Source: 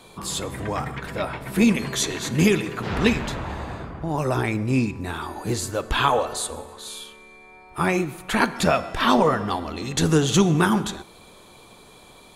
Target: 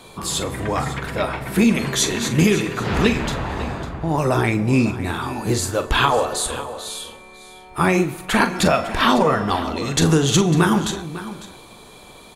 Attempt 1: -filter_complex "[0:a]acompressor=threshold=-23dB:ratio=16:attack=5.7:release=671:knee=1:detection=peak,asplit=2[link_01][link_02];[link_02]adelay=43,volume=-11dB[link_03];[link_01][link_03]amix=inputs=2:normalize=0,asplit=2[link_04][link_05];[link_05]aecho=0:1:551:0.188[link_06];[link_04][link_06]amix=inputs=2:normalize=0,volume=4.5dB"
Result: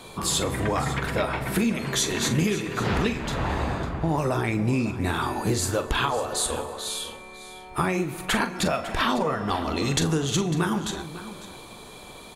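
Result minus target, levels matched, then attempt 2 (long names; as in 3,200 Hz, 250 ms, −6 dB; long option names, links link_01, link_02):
downward compressor: peak gain reduction +8.5 dB
-filter_complex "[0:a]acompressor=threshold=-14dB:ratio=16:attack=5.7:release=671:knee=1:detection=peak,asplit=2[link_01][link_02];[link_02]adelay=43,volume=-11dB[link_03];[link_01][link_03]amix=inputs=2:normalize=0,asplit=2[link_04][link_05];[link_05]aecho=0:1:551:0.188[link_06];[link_04][link_06]amix=inputs=2:normalize=0,volume=4.5dB"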